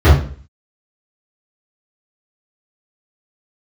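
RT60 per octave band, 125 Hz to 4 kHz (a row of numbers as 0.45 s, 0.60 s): 0.45 s, 0.50 s, 0.50 s, 0.40 s, 0.45 s, 0.40 s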